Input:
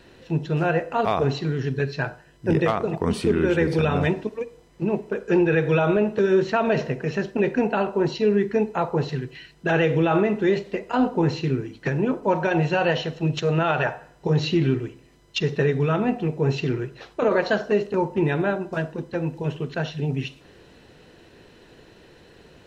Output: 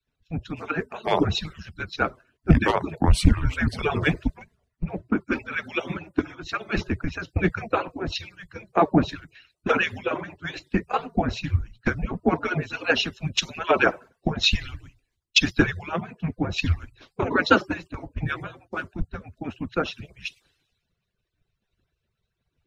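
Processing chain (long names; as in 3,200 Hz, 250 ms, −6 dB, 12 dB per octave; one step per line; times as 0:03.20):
harmonic-percussive split with one part muted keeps percussive
frequency shifter −170 Hz
multiband upward and downward expander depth 100%
level +3.5 dB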